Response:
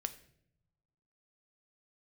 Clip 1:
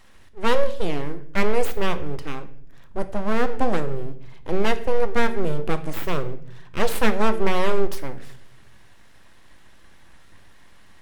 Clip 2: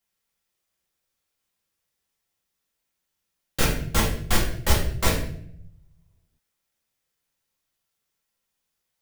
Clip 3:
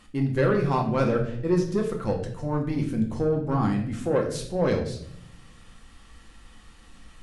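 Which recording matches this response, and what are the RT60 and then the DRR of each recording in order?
1; non-exponential decay, 0.65 s, 0.70 s; 9.5, −4.0, 1.0 decibels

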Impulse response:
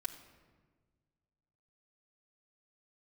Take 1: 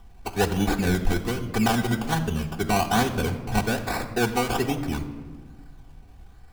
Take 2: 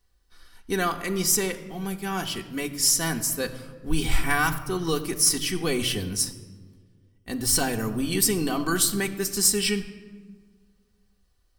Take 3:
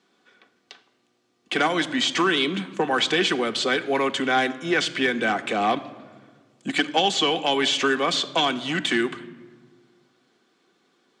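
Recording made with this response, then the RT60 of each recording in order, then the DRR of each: 1; non-exponential decay, non-exponential decay, non-exponential decay; −3.0, 1.5, 5.5 decibels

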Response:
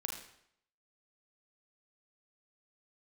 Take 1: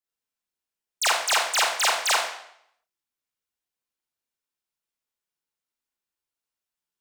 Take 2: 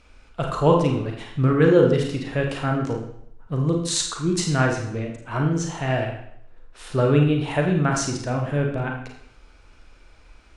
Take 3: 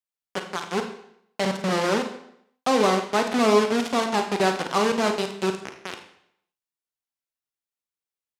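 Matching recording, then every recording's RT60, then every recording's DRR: 2; 0.70, 0.70, 0.70 seconds; −5.5, 1.0, 5.0 decibels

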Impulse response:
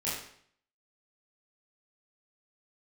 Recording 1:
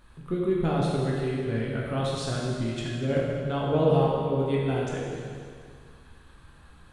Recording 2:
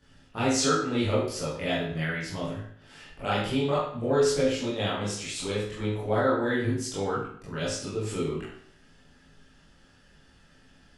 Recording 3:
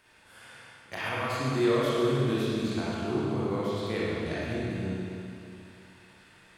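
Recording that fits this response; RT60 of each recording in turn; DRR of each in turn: 2; 2.0, 0.60, 2.7 seconds; −4.5, −10.0, −8.0 decibels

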